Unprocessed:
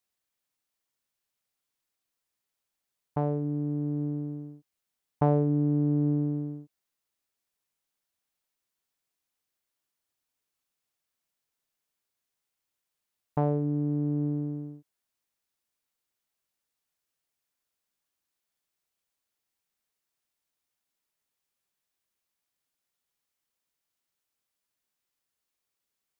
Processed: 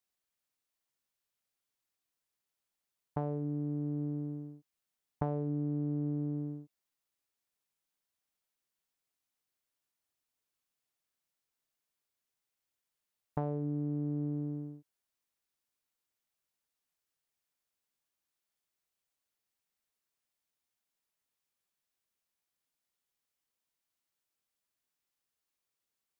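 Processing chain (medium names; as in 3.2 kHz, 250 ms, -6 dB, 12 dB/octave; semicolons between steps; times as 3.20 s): compression 5:1, threshold -27 dBFS, peak gain reduction 8.5 dB; trim -3.5 dB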